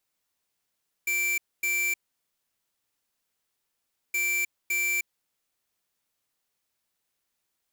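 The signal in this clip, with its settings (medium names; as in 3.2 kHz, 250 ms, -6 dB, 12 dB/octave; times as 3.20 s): beep pattern square 2.34 kHz, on 0.31 s, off 0.25 s, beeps 2, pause 2.20 s, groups 2, -26.5 dBFS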